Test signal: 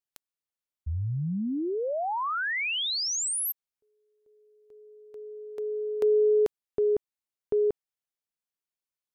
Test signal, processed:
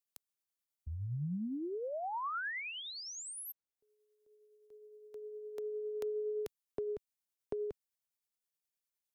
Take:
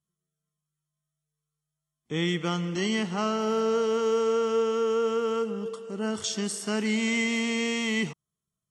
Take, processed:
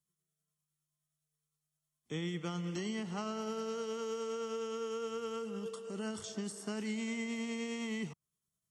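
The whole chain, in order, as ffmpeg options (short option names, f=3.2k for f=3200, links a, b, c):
-filter_complex "[0:a]highshelf=f=4.6k:g=8,tremolo=f=9.7:d=0.31,acrossover=split=140|1500[a][b][c];[a]acompressor=threshold=-39dB:ratio=4[d];[b]acompressor=threshold=-35dB:ratio=4[e];[c]acompressor=threshold=-45dB:ratio=4[f];[d][e][f]amix=inputs=3:normalize=0,volume=-3.5dB"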